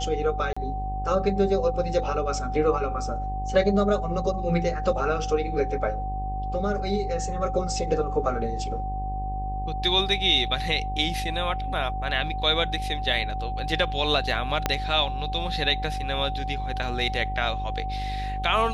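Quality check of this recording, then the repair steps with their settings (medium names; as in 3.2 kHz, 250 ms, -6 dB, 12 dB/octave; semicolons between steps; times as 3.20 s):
buzz 50 Hz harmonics 21 -31 dBFS
whine 760 Hz -31 dBFS
0.53–0.56 s: dropout 35 ms
14.66 s: pop -7 dBFS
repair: de-click; band-stop 760 Hz, Q 30; de-hum 50 Hz, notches 21; interpolate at 0.53 s, 35 ms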